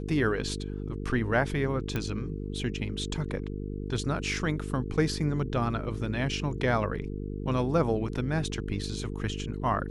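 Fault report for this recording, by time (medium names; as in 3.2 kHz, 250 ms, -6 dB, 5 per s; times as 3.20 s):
buzz 50 Hz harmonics 9 -35 dBFS
1.96 s: pop -17 dBFS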